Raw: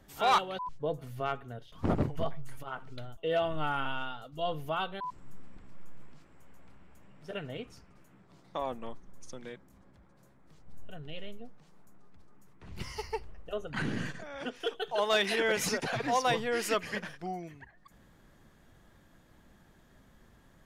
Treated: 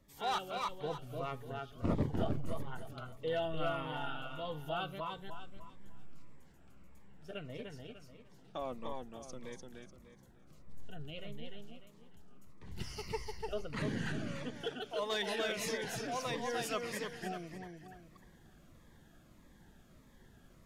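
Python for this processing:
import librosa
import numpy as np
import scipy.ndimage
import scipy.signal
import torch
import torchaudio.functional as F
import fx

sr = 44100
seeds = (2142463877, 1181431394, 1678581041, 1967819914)

y = fx.rider(x, sr, range_db=4, speed_s=2.0)
y = fx.echo_feedback(y, sr, ms=298, feedback_pct=32, wet_db=-3.5)
y = fx.notch_cascade(y, sr, direction='falling', hz=1.6)
y = y * 10.0 ** (-5.5 / 20.0)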